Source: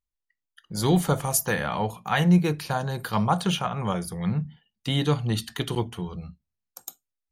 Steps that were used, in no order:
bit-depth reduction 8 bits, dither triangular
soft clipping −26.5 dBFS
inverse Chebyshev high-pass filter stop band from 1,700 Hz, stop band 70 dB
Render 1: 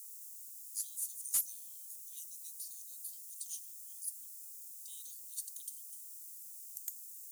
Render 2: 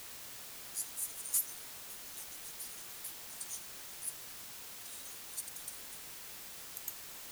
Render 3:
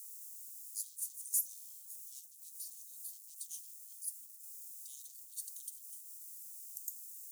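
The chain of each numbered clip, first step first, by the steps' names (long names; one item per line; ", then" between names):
bit-depth reduction, then inverse Chebyshev high-pass filter, then soft clipping
inverse Chebyshev high-pass filter, then bit-depth reduction, then soft clipping
bit-depth reduction, then soft clipping, then inverse Chebyshev high-pass filter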